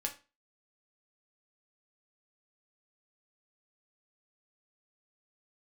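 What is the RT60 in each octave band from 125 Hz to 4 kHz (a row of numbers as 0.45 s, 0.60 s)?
0.30 s, 0.35 s, 0.30 s, 0.30 s, 0.30 s, 0.30 s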